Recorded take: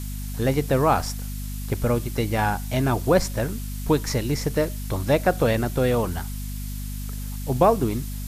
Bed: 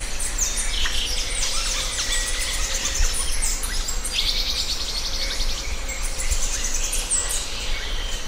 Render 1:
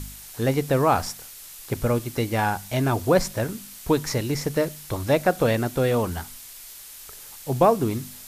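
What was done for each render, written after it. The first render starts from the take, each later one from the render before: de-hum 50 Hz, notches 5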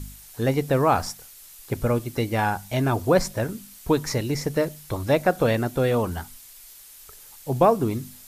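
denoiser 6 dB, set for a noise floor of -43 dBFS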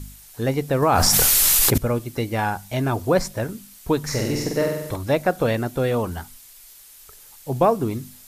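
0.82–1.78 fast leveller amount 100%; 3.99–4.96 flutter echo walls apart 8.1 m, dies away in 0.9 s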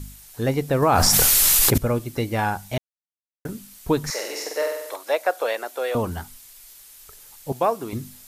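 2.78–3.45 mute; 4.1–5.95 HPF 490 Hz 24 dB/oct; 7.52–7.93 HPF 730 Hz 6 dB/oct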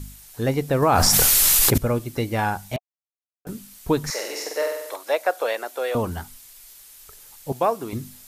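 2.76–3.47 vowel filter a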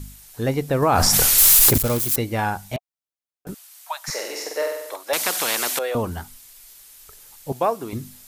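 1.38–2.16 switching spikes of -14.5 dBFS; 3.54–4.08 steep high-pass 620 Hz 96 dB/oct; 5.13–5.79 spectral compressor 4:1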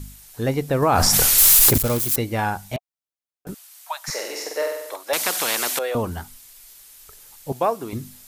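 nothing audible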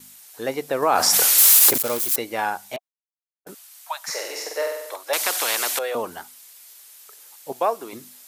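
HPF 400 Hz 12 dB/oct; gate with hold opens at -40 dBFS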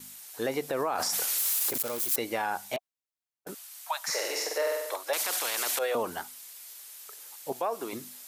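compressor, threshold -20 dBFS, peak gain reduction 9.5 dB; limiter -20 dBFS, peak gain reduction 9.5 dB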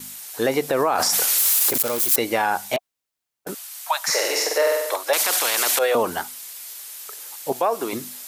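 gain +9.5 dB

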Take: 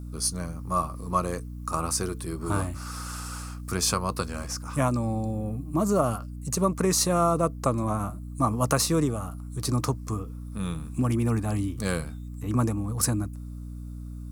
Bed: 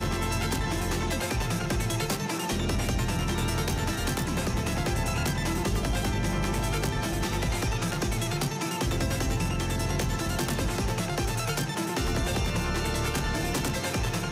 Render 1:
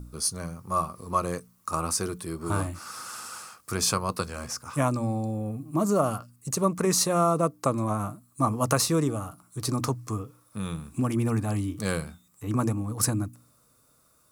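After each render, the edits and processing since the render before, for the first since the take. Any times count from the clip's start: de-hum 60 Hz, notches 5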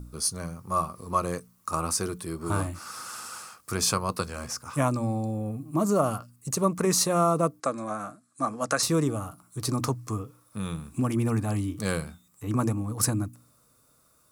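7.6–8.83 speaker cabinet 290–9000 Hz, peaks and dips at 380 Hz -9 dB, 960 Hz -9 dB, 1600 Hz +6 dB, 2900 Hz -5 dB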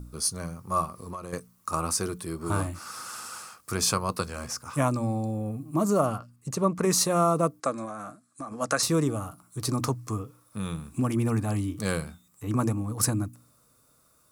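0.85–1.33 compressor, threshold -34 dBFS; 6.06–6.83 LPF 3700 Hz 6 dB/oct; 7.85–8.52 compressor, threshold -33 dBFS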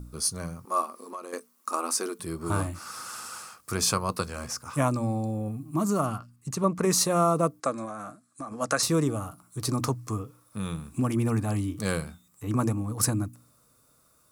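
0.65–2.2 brick-wall FIR high-pass 210 Hz; 5.48–6.64 bell 530 Hz -8.5 dB 0.73 oct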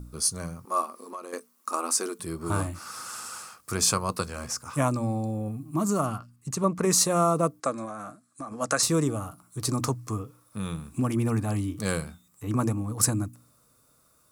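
dynamic EQ 7600 Hz, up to +5 dB, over -45 dBFS, Q 2.1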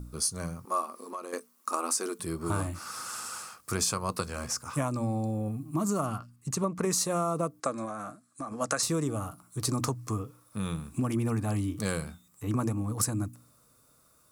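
compressor, threshold -25 dBFS, peak gain reduction 8.5 dB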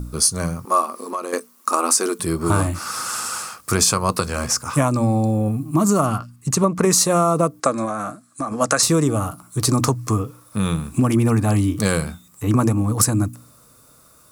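gain +12 dB; limiter -3 dBFS, peak gain reduction 2.5 dB

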